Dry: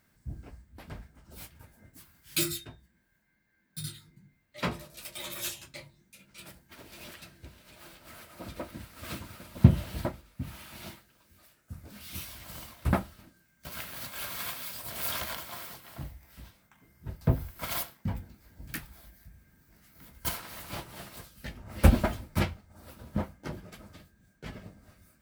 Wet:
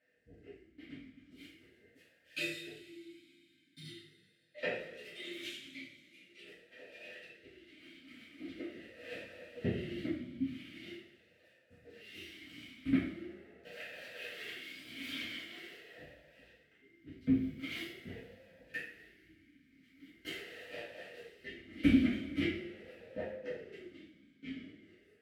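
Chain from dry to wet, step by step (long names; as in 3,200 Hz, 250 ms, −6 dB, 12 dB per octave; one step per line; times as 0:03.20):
coupled-rooms reverb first 0.56 s, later 2.7 s, from −16 dB, DRR −7.5 dB
formant filter swept between two vowels e-i 0.43 Hz
level +1.5 dB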